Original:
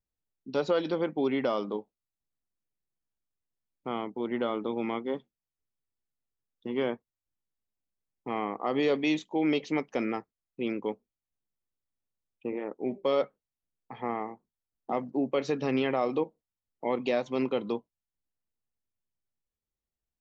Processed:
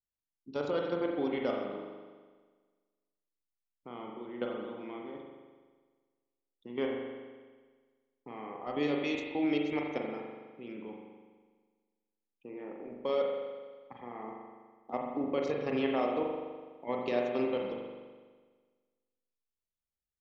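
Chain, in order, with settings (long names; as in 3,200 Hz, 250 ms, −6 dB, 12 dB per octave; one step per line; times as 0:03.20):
output level in coarse steps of 14 dB
spring reverb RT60 1.5 s, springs 41 ms, chirp 55 ms, DRR 0 dB
level −3.5 dB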